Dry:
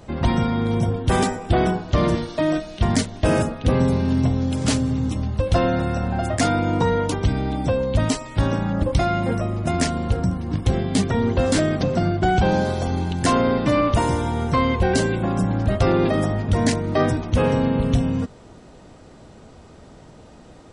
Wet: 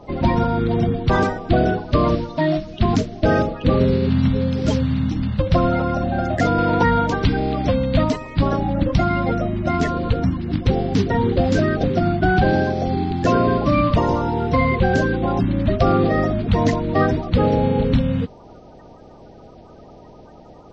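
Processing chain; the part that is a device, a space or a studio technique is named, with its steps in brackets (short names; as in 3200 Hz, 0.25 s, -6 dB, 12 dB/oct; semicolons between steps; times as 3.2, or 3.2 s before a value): clip after many re-uploads (LPF 4500 Hz 24 dB/oct; bin magnitudes rounded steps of 30 dB); 6.58–8.04 bell 2700 Hz +5 dB 3 oct; gain +2.5 dB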